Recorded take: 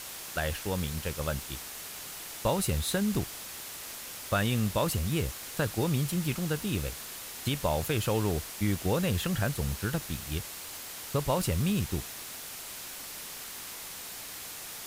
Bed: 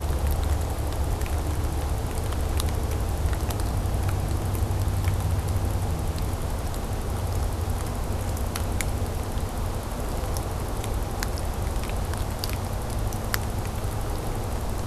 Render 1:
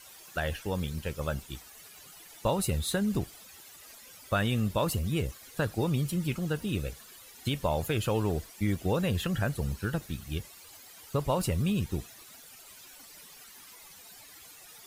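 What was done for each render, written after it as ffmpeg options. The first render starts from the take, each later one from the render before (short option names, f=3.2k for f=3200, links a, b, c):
-af "afftdn=nr=14:nf=-42"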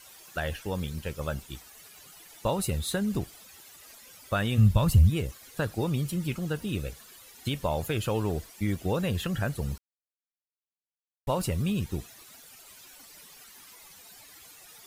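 -filter_complex "[0:a]asplit=3[a][b][c];[a]afade=t=out:st=4.57:d=0.02[d];[b]asubboost=boost=8.5:cutoff=130,afade=t=in:st=4.57:d=0.02,afade=t=out:st=5.09:d=0.02[e];[c]afade=t=in:st=5.09:d=0.02[f];[d][e][f]amix=inputs=3:normalize=0,asplit=3[g][h][i];[g]atrim=end=9.78,asetpts=PTS-STARTPTS,afade=t=out:st=9.776:d=0.004:c=hsin[j];[h]atrim=start=9.78:end=11.27,asetpts=PTS-STARTPTS,volume=0[k];[i]atrim=start=11.27,asetpts=PTS-STARTPTS,afade=t=in:d=0.004:c=hsin[l];[j][k][l]concat=n=3:v=0:a=1"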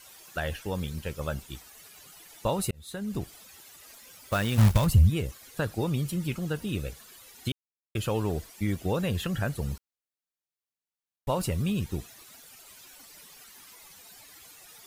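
-filter_complex "[0:a]asplit=3[a][b][c];[a]afade=t=out:st=3.91:d=0.02[d];[b]acrusher=bits=3:mode=log:mix=0:aa=0.000001,afade=t=in:st=3.91:d=0.02,afade=t=out:st=4.85:d=0.02[e];[c]afade=t=in:st=4.85:d=0.02[f];[d][e][f]amix=inputs=3:normalize=0,asplit=4[g][h][i][j];[g]atrim=end=2.71,asetpts=PTS-STARTPTS,afade=t=out:st=2.706:d=0.004:c=hsin[k];[h]atrim=start=2.71:end=7.52,asetpts=PTS-STARTPTS,afade=t=in:d=0.62,afade=t=out:st=4.806:d=0.004:c=hsin[l];[i]atrim=start=7.52:end=7.95,asetpts=PTS-STARTPTS,volume=0[m];[j]atrim=start=7.95,asetpts=PTS-STARTPTS,afade=t=in:d=0.004:c=hsin[n];[k][l][m][n]concat=n=4:v=0:a=1"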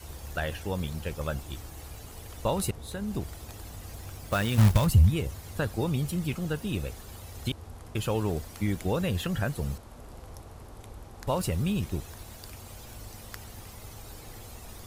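-filter_complex "[1:a]volume=-17dB[a];[0:a][a]amix=inputs=2:normalize=0"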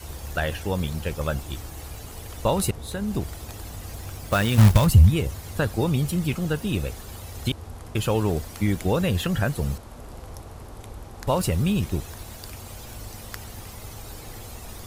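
-af "volume=5.5dB"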